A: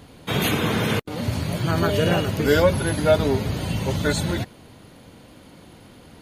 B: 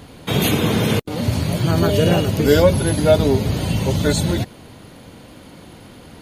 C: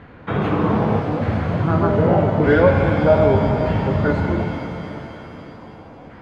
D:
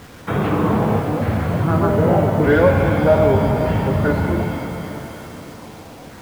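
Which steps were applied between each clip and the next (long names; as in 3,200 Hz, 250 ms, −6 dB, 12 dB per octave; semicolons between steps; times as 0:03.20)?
dynamic equaliser 1,500 Hz, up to −7 dB, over −38 dBFS, Q 0.83; level +5.5 dB
auto-filter low-pass saw down 0.82 Hz 700–1,800 Hz; reverb with rising layers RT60 3.1 s, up +7 semitones, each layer −8 dB, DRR 3 dB; level −3 dB
in parallel at −9 dB: soft clipping −17 dBFS, distortion −9 dB; on the sum: bit reduction 7 bits; level −1 dB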